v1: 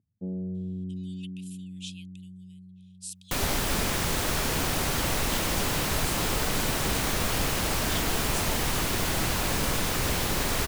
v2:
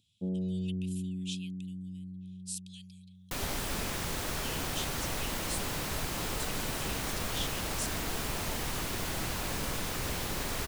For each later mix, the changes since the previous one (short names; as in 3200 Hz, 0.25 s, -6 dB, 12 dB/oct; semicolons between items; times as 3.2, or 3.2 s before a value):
speech: entry -0.55 s; second sound -7.5 dB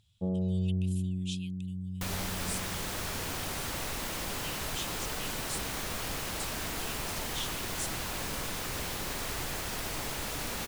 first sound: remove band-pass 270 Hz, Q 1.8; second sound: entry -1.30 s; master: add low shelf 430 Hz -3.5 dB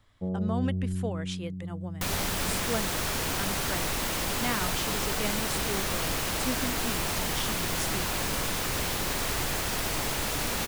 speech: remove rippled Chebyshev high-pass 2500 Hz, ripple 3 dB; second sound +6.0 dB